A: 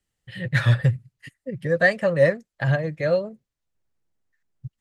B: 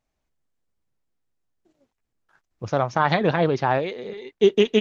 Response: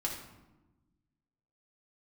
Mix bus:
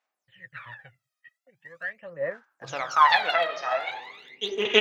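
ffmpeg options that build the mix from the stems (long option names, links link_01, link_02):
-filter_complex "[0:a]agate=range=-14dB:threshold=-48dB:ratio=16:detection=peak,lowpass=frequency=2900:width=0.5412,lowpass=frequency=2900:width=1.3066,aemphasis=mode=reproduction:type=riaa,volume=-12dB,asplit=2[link_01][link_02];[1:a]volume=-3.5dB,asplit=2[link_03][link_04];[link_04]volume=-3dB[link_05];[link_02]apad=whole_len=211862[link_06];[link_03][link_06]sidechaingate=range=-14dB:threshold=-54dB:ratio=16:detection=peak[link_07];[2:a]atrim=start_sample=2205[link_08];[link_05][link_08]afir=irnorm=-1:irlink=0[link_09];[link_01][link_07][link_09]amix=inputs=3:normalize=0,highpass=1100,aphaser=in_gain=1:out_gain=1:delay=1.6:decay=0.79:speed=0.42:type=sinusoidal"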